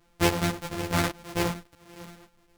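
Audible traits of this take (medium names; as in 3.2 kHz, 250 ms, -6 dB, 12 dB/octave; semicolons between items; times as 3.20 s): a buzz of ramps at a fixed pitch in blocks of 256 samples; chopped level 9.7 Hz, depth 60%, duty 85%; a shimmering, thickened sound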